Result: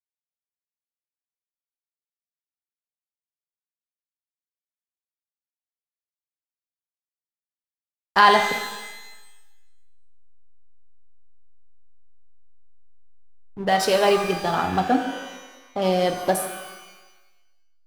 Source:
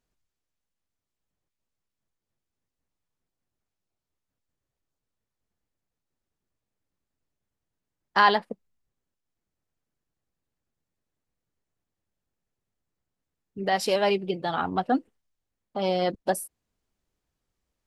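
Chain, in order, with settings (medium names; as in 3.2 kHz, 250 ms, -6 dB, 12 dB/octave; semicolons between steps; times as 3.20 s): treble shelf 6 kHz +4.5 dB; hysteresis with a dead band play -32.5 dBFS; pitch-shifted reverb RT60 1.1 s, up +12 st, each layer -8 dB, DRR 5 dB; trim +3.5 dB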